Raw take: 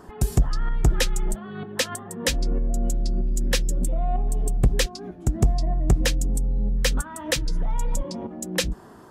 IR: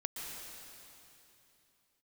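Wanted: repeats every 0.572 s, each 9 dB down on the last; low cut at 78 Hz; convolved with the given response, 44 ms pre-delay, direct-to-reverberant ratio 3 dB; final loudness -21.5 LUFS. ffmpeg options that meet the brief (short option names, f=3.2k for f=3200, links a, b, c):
-filter_complex "[0:a]highpass=78,aecho=1:1:572|1144|1716|2288:0.355|0.124|0.0435|0.0152,asplit=2[a][b];[1:a]atrim=start_sample=2205,adelay=44[c];[b][c]afir=irnorm=-1:irlink=0,volume=-4dB[d];[a][d]amix=inputs=2:normalize=0,volume=5dB"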